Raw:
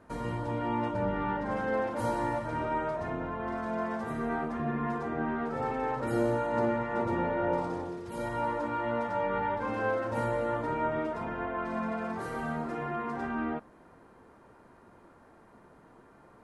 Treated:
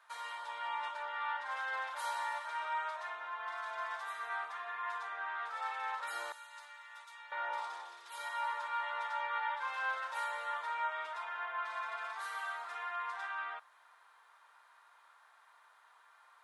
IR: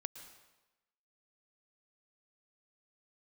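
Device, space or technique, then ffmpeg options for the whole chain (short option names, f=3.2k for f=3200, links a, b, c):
headphones lying on a table: -filter_complex "[0:a]highpass=f=1k:w=0.5412,highpass=f=1k:w=1.3066,equalizer=f=3.6k:t=o:w=0.37:g=8.5,asettb=1/sr,asplit=3[a][b][c];[a]atrim=end=6.324[d];[b]atrim=start=6.32:end=7.32,asetpts=PTS-STARTPTS,afade=t=in:d=0.004:c=qsin,afade=t=out:st=0.996:d=0.004:c=qsin,aderivative[e];[c]atrim=start=7.316[f];[d][e]acrossfade=d=0.004:c1=hsin:c2=qsin[g];[g][f]acrossfade=d=0.004:c1=qsin:c2=hsin"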